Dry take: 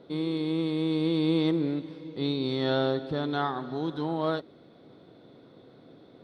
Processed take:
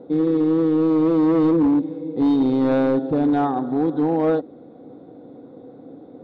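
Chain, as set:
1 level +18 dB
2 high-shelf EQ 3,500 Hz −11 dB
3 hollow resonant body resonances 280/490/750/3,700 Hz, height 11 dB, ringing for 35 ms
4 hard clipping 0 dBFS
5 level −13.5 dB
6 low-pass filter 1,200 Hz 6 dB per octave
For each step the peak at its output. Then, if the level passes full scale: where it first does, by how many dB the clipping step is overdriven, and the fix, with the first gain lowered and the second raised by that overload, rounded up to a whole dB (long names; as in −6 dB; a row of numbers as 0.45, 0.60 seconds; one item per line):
+3.5, +3.0, +9.0, 0.0, −13.5, −13.5 dBFS
step 1, 9.0 dB
step 1 +9 dB, step 5 −4.5 dB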